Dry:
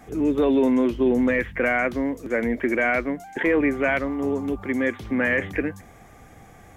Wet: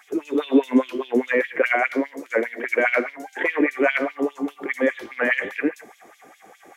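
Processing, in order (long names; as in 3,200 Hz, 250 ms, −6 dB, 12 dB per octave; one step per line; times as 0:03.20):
reverb whose tail is shaped and stops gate 170 ms flat, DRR 11 dB
auto-filter high-pass sine 4.9 Hz 290–3,600 Hz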